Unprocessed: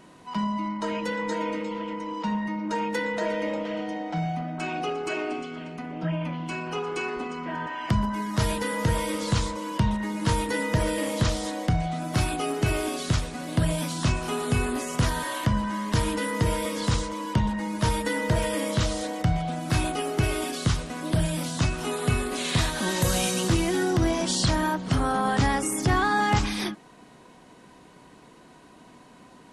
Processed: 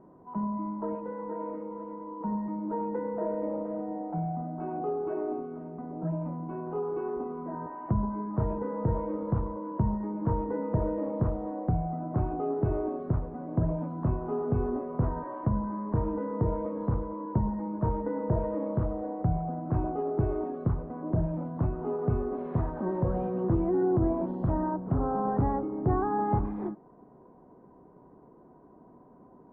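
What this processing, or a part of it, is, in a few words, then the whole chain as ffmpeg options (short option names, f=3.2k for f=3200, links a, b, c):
under water: -filter_complex "[0:a]lowpass=f=1k:w=0.5412,lowpass=f=1k:w=1.3066,equalizer=f=390:t=o:w=0.34:g=5,asettb=1/sr,asplit=3[a][b][c];[a]atrim=end=0.954[d];[b]atrim=start=0.95:end=2.21,asetpts=PTS-STARTPTS,afade=t=in:d=0.004:c=qsin,afade=t=out:st=1.256:d=0.004:c=qsin,lowshelf=f=480:g=-6.5[e];[c]atrim=start=2.206[f];[d][e]acrossfade=d=0.004:c1=hsin:c2=qsin[g];[g][f]acrossfade=d=0.004:c1=qsin:c2=hsin,volume=-3.5dB"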